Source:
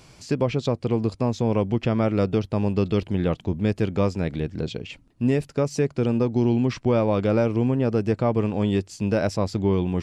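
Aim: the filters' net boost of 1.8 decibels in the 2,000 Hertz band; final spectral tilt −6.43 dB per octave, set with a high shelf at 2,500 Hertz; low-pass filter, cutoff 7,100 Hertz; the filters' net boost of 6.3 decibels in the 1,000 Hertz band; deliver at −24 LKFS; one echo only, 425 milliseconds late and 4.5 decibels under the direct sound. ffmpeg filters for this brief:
ffmpeg -i in.wav -af "lowpass=7100,equalizer=frequency=1000:width_type=o:gain=8.5,equalizer=frequency=2000:width_type=o:gain=4,highshelf=frequency=2500:gain=-9,aecho=1:1:425:0.596,volume=-2.5dB" out.wav

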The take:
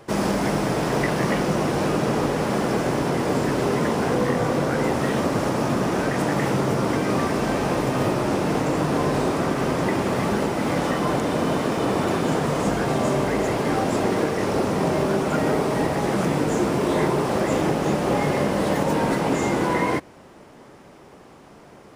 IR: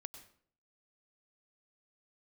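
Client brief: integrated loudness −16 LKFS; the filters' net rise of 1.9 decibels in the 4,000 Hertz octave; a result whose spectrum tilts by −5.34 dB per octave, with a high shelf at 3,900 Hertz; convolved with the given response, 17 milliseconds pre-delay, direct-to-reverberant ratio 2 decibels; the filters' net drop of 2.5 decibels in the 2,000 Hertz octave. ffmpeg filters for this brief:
-filter_complex "[0:a]equalizer=frequency=2000:width_type=o:gain=-3.5,highshelf=frequency=3900:gain=-4.5,equalizer=frequency=4000:width_type=o:gain=6.5,asplit=2[link_01][link_02];[1:a]atrim=start_sample=2205,adelay=17[link_03];[link_02][link_03]afir=irnorm=-1:irlink=0,volume=3dB[link_04];[link_01][link_04]amix=inputs=2:normalize=0,volume=4.5dB"

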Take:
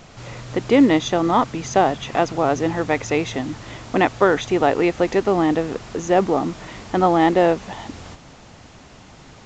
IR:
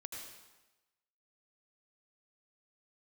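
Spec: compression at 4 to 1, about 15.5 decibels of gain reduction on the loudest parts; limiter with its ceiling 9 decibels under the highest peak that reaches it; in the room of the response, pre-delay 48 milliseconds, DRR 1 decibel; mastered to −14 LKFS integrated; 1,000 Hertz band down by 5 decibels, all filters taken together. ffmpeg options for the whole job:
-filter_complex "[0:a]equalizer=frequency=1000:width_type=o:gain=-7.5,acompressor=threshold=-29dB:ratio=4,alimiter=level_in=1.5dB:limit=-24dB:level=0:latency=1,volume=-1.5dB,asplit=2[link_01][link_02];[1:a]atrim=start_sample=2205,adelay=48[link_03];[link_02][link_03]afir=irnorm=-1:irlink=0,volume=1.5dB[link_04];[link_01][link_04]amix=inputs=2:normalize=0,volume=19.5dB"

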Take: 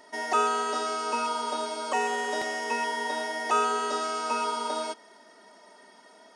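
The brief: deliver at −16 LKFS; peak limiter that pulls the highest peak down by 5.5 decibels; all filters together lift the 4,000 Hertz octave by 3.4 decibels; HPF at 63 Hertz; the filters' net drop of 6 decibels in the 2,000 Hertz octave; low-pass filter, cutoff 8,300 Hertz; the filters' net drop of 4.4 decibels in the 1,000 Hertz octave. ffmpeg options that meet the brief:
ffmpeg -i in.wav -af "highpass=63,lowpass=8300,equalizer=frequency=1000:width_type=o:gain=-3.5,equalizer=frequency=2000:width_type=o:gain=-8,equalizer=frequency=4000:width_type=o:gain=7.5,volume=16dB,alimiter=limit=-6.5dB:level=0:latency=1" out.wav

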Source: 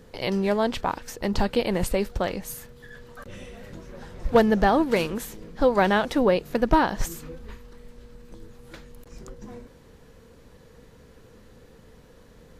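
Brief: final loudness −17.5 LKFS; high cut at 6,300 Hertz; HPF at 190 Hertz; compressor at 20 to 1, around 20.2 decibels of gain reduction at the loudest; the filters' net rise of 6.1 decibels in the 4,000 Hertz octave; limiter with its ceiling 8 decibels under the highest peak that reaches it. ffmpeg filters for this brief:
ffmpeg -i in.wav -af "highpass=190,lowpass=6300,equalizer=frequency=4000:width_type=o:gain=8.5,acompressor=threshold=-32dB:ratio=20,volume=23.5dB,alimiter=limit=-4.5dB:level=0:latency=1" out.wav

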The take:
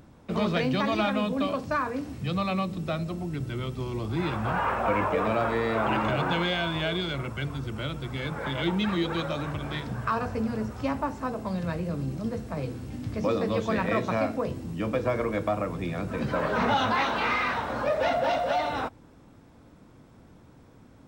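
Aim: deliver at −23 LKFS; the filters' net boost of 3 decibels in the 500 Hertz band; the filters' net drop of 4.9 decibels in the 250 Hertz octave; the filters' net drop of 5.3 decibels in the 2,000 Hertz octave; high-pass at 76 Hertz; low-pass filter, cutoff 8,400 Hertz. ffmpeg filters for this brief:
ffmpeg -i in.wav -af "highpass=76,lowpass=8400,equalizer=frequency=250:width_type=o:gain=-8.5,equalizer=frequency=500:width_type=o:gain=6,equalizer=frequency=2000:width_type=o:gain=-7.5,volume=5.5dB" out.wav

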